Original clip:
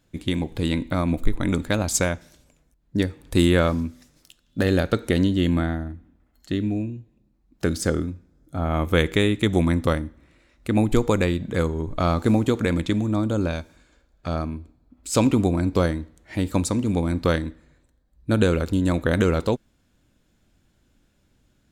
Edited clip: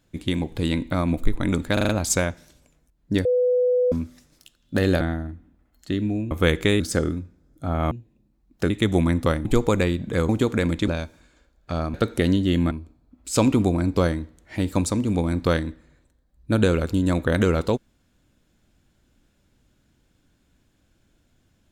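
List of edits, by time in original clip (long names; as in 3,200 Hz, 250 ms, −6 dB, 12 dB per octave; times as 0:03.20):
0:01.73: stutter 0.04 s, 5 plays
0:03.09–0:03.76: beep over 497 Hz −16.5 dBFS
0:04.85–0:05.62: move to 0:14.50
0:06.92–0:07.71: swap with 0:08.82–0:09.31
0:10.06–0:10.86: remove
0:11.70–0:12.36: remove
0:12.95–0:13.44: remove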